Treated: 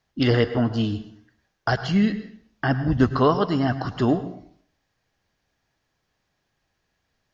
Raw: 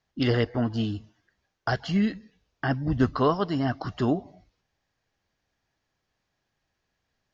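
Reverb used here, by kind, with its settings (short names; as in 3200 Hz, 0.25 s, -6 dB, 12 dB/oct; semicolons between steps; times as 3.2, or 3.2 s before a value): plate-style reverb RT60 0.56 s, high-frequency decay 0.8×, pre-delay 90 ms, DRR 12 dB; gain +4 dB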